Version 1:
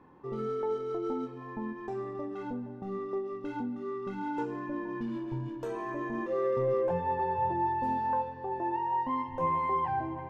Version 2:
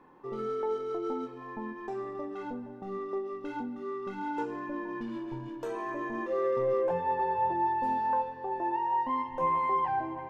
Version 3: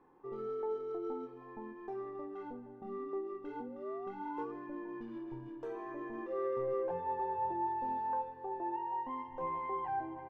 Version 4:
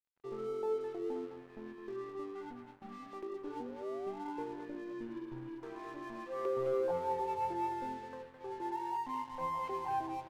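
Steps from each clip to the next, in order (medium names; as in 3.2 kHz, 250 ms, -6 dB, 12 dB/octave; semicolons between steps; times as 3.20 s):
peaking EQ 78 Hz -11.5 dB 2.7 oct; trim +2 dB
low-pass 1.6 kHz 6 dB/octave; comb 2.5 ms, depth 33%; painted sound rise, 2.81–4.52 s, 210–1200 Hz -44 dBFS; trim -7 dB
LFO notch saw down 0.31 Hz 340–2500 Hz; speakerphone echo 210 ms, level -7 dB; crossover distortion -57 dBFS; trim +2 dB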